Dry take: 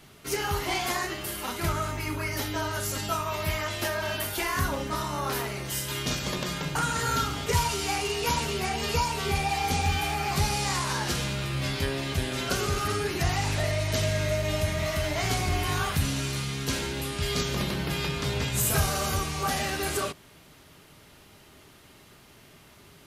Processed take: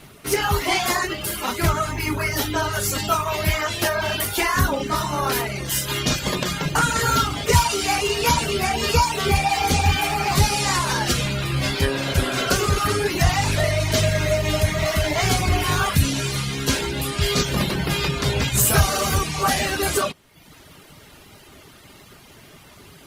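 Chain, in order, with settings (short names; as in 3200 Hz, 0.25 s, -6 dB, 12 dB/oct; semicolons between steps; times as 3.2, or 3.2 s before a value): reverb removal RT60 0.78 s; spectral repair 11.95–12.44, 450–1800 Hz both; gain +9 dB; Opus 32 kbps 48000 Hz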